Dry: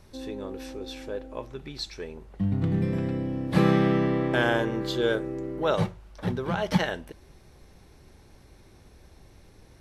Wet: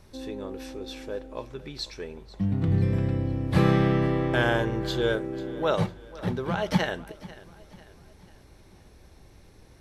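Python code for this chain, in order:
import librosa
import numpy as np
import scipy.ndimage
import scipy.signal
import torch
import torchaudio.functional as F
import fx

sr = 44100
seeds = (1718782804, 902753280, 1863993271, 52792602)

y = fx.low_shelf_res(x, sr, hz=130.0, db=8.0, q=1.5, at=(2.68, 5.16))
y = fx.echo_feedback(y, sr, ms=493, feedback_pct=45, wet_db=-19.0)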